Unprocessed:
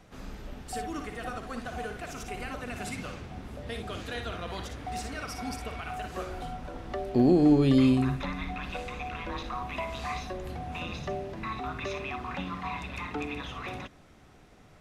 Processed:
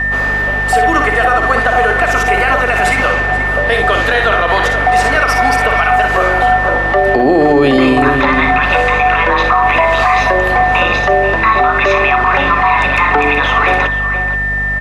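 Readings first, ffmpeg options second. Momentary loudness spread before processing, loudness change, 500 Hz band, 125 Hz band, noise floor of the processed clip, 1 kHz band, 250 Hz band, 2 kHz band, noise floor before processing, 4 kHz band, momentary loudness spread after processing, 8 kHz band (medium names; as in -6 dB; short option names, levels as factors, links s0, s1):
16 LU, +20.5 dB, +21.0 dB, +13.0 dB, -15 dBFS, +26.5 dB, +10.0 dB, +30.5 dB, -55 dBFS, +19.5 dB, 3 LU, +16.0 dB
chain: -filter_complex "[0:a]aeval=exprs='val(0)+0.00891*sin(2*PI*1800*n/s)':c=same,acrossover=split=430 2500:gain=0.1 1 0.224[s0][s1][s2];[s0][s1][s2]amix=inputs=3:normalize=0,bandreject=f=60:t=h:w=6,bandreject=f=120:t=h:w=6,bandreject=f=180:t=h:w=6,bandreject=f=240:t=h:w=6,bandreject=f=300:t=h:w=6,bandreject=f=360:t=h:w=6,aeval=exprs='val(0)+0.00282*(sin(2*PI*50*n/s)+sin(2*PI*2*50*n/s)/2+sin(2*PI*3*50*n/s)/3+sin(2*PI*4*50*n/s)/4+sin(2*PI*5*50*n/s)/5)':c=same,asplit=2[s3][s4];[s4]adelay=478.1,volume=0.282,highshelf=f=4000:g=-10.8[s5];[s3][s5]amix=inputs=2:normalize=0,alimiter=level_in=33.5:limit=0.891:release=50:level=0:latency=1,volume=0.891"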